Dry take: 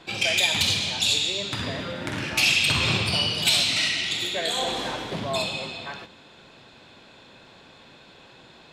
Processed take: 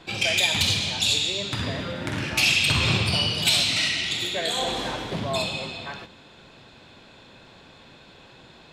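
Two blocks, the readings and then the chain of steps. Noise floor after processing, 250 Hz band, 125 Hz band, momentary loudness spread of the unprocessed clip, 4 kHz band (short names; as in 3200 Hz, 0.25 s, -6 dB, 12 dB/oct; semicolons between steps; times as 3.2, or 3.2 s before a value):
-50 dBFS, +1.5 dB, +3.5 dB, 12 LU, 0.0 dB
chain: low shelf 130 Hz +6.5 dB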